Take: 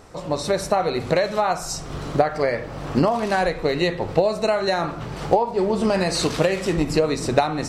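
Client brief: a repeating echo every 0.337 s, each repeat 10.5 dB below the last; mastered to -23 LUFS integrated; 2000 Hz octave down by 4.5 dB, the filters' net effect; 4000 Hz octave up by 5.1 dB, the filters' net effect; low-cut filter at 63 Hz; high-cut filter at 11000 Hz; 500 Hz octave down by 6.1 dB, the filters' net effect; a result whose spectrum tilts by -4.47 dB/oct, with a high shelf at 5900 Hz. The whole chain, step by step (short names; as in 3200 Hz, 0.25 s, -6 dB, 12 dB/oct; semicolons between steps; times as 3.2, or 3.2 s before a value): HPF 63 Hz; LPF 11000 Hz; bell 500 Hz -7.5 dB; bell 2000 Hz -7 dB; bell 4000 Hz +9 dB; high shelf 5900 Hz -5.5 dB; feedback echo 0.337 s, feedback 30%, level -10.5 dB; gain +1.5 dB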